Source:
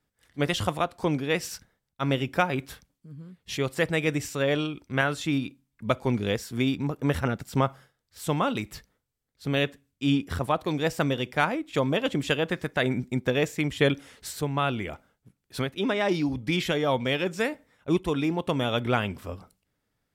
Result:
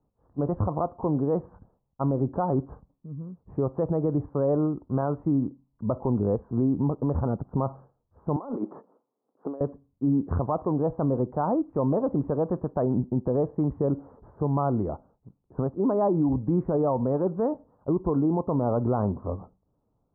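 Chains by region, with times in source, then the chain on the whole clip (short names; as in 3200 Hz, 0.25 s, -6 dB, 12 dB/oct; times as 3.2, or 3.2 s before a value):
8.36–9.61 HPF 260 Hz 24 dB/oct + negative-ratio compressor -38 dBFS
10.21–10.77 bell 1800 Hz +8 dB 0.57 oct + notch 2300 Hz, Q 10
whole clip: steep low-pass 1100 Hz 48 dB/oct; limiter -22.5 dBFS; gain +6 dB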